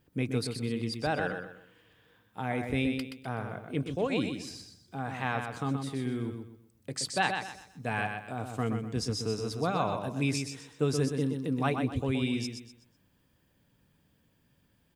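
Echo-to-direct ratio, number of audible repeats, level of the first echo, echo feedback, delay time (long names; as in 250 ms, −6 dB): −5.5 dB, 3, −6.0 dB, 32%, 125 ms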